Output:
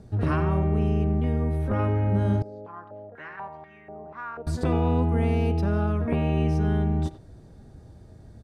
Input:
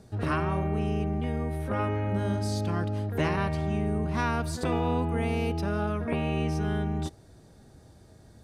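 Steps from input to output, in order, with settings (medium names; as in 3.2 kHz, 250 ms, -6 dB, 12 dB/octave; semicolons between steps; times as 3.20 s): tilt EQ -2 dB/octave; speakerphone echo 90 ms, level -13 dB; 2.42–4.47 s: step-sequenced band-pass 4.1 Hz 500–1900 Hz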